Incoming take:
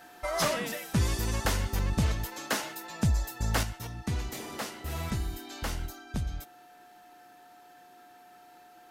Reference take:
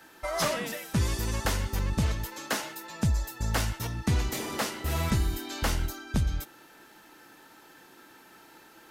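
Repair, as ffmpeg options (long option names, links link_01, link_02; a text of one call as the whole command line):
ffmpeg -i in.wav -af "bandreject=frequency=720:width=30,asetnsamples=nb_out_samples=441:pad=0,asendcmd='3.63 volume volume 6dB',volume=0dB" out.wav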